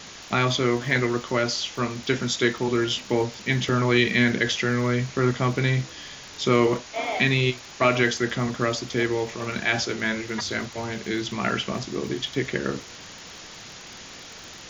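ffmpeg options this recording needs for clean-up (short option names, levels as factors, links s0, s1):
-af "adeclick=t=4,afwtdn=0.013"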